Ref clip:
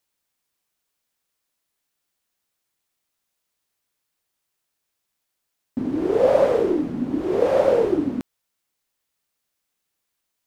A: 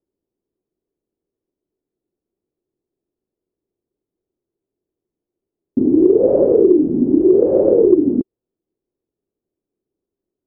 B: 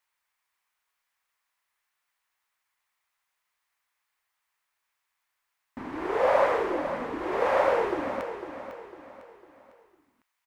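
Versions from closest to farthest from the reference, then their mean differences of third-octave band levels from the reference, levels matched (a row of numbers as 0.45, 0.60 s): B, A; 6.5, 9.5 dB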